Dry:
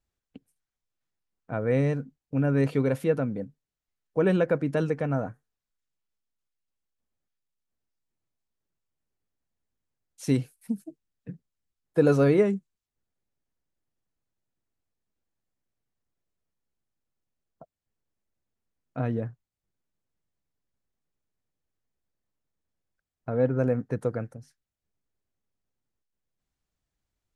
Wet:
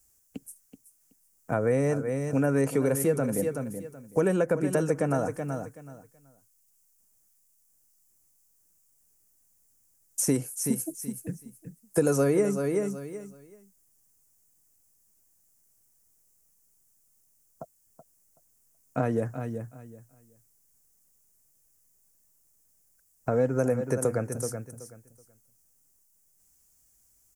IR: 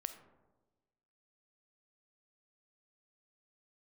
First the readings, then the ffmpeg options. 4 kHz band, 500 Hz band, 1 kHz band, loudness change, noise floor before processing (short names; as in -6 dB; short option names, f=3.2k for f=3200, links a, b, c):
+1.0 dB, +0.5 dB, +2.5 dB, -1.5 dB, under -85 dBFS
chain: -filter_complex "[0:a]highshelf=f=8.8k:g=-6,aecho=1:1:377|754|1131:0.251|0.0502|0.01,acrossover=split=300|1900[a][b][c];[a]acompressor=threshold=-39dB:ratio=4[d];[b]acompressor=threshold=-32dB:ratio=4[e];[c]acompressor=threshold=-58dB:ratio=4[f];[d][e][f]amix=inputs=3:normalize=0,aexciter=amount=14.5:drive=5.3:freq=5.8k,volume=7.5dB"